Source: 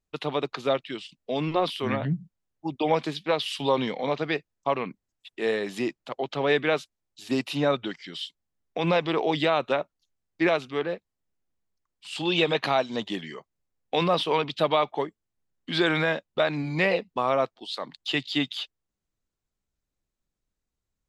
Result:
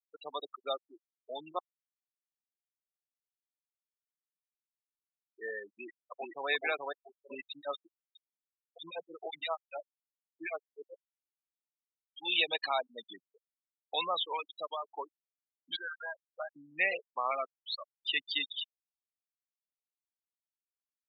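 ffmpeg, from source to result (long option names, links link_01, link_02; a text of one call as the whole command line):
ffmpeg -i in.wav -filter_complex "[0:a]asplit=2[link_01][link_02];[link_02]afade=type=in:start_time=5.72:duration=0.01,afade=type=out:start_time=6.49:duration=0.01,aecho=0:1:430|860|1290|1720|2150:0.891251|0.3565|0.1426|0.0570401|0.022816[link_03];[link_01][link_03]amix=inputs=2:normalize=0,asettb=1/sr,asplit=3[link_04][link_05][link_06];[link_04]atrim=end=7.444[link_07];[link_05]atrim=start=7.44:end=12.25,asetpts=PTS-STARTPTS,afade=type=in:duration=0.004:curve=qsin,afade=type=out:start_time=4.806:duration=0.004:curve=qsin,acrossover=split=1600[link_08][link_09];[link_08]aeval=exprs='val(0)*(1-1/2+1/2*cos(2*PI*7.7*n/s))':channel_layout=same[link_10];[link_09]aeval=exprs='val(0)*(1-1/2-1/2*cos(2*PI*7.7*n/s))':channel_layout=same[link_11];[link_10][link_11]amix=inputs=2:normalize=0[link_12];[link_06]atrim=start=12.246[link_13];[link_07][link_12]acrossfade=duration=0.004:curve1=hsin:curve2=qsin[link_14];[link_14][link_13]acrossfade=duration=0.004:curve1=qsin:curve2=hsin,asettb=1/sr,asplit=3[link_15][link_16][link_17];[link_15]atrim=end=15.764[link_18];[link_16]atrim=start=15.76:end=16.56,asetpts=PTS-STARTPTS,afade=type=in:duration=0.004:curve=qsin,afade=type=out:start_time=0.796:duration=0.004:curve=qsin,bandpass=frequency=990:width_type=q:width=1.8[link_19];[link_17]atrim=start=16.556[link_20];[link_18][link_19]acrossfade=duration=0.004:curve1=hsin:curve2=qsin[link_21];[link_21][link_20]acrossfade=duration=0.004:curve1=qsin:curve2=hsin,asettb=1/sr,asplit=3[link_22][link_23][link_24];[link_22]atrim=end=17.314[link_25];[link_23]atrim=start=17.31:end=17.75,asetpts=PTS-STARTPTS,afade=type=in:duration=0.004:curve=qsin,afade=type=out:start_time=0.436:duration=0.004:curve=qsin,highpass=230,equalizer=frequency=250:width_type=q:width=4:gain=4,equalizer=frequency=510:width_type=q:width=4:gain=-6,equalizer=frequency=1000:width_type=q:width=4:gain=-5,equalizer=frequency=1600:width_type=q:width=4:gain=4,equalizer=frequency=2500:width_type=q:width=4:gain=7,lowpass=frequency=8200:width=0.5412,lowpass=frequency=8200:width=1.3066[link_26];[link_24]atrim=start=17.746[link_27];[link_25][link_26]acrossfade=duration=0.004:curve1=hsin:curve2=qsin[link_28];[link_28][link_27]acrossfade=duration=0.004:curve1=qsin:curve2=hsin,asplit=4[link_29][link_30][link_31][link_32];[link_29]atrim=end=1.59,asetpts=PTS-STARTPTS,afade=type=out:start_time=1.586:duration=0.004:curve=hsin[link_33];[link_30]atrim=start=1.59:end=4.89,asetpts=PTS-STARTPTS,volume=0[link_34];[link_31]atrim=start=4.89:end=14.84,asetpts=PTS-STARTPTS,afade=type=in:duration=0.004:curve=hsin,afade=type=out:start_time=9.08:duration=0.87:silence=0.421697[link_35];[link_32]atrim=start=14.84,asetpts=PTS-STARTPTS,afade=type=in:duration=0.004:curve=hsin:silence=0.421697[link_36];[link_33][link_34][link_35][link_36]concat=n=4:v=0:a=1,aemphasis=mode=production:type=cd,afftfilt=real='re*gte(hypot(re,im),0.112)':imag='im*gte(hypot(re,im),0.112)':win_size=1024:overlap=0.75,highpass=870,volume=-3.5dB" out.wav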